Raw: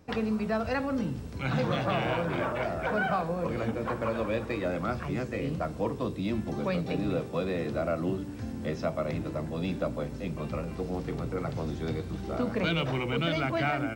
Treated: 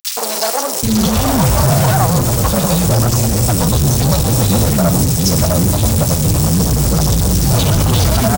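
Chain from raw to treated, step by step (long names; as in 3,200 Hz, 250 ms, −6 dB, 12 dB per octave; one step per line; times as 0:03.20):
in parallel at −1 dB: brickwall limiter −24 dBFS, peak gain reduction 7.5 dB
on the sum: drawn EQ curve 110 Hz 0 dB, 350 Hz −16 dB, 910 Hz −9 dB, 2,100 Hz −25 dB, 5,900 Hz +9 dB, 13,000 Hz +15 dB
on a send: delay with a high-pass on its return 92 ms, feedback 65%, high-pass 3,800 Hz, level −8 dB
on the sum: phase-vocoder stretch with locked phases 0.6×
fuzz pedal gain 50 dB, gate −45 dBFS
three-band delay without the direct sound highs, mids, lows 120/780 ms, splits 400/1,900 Hz
level +3 dB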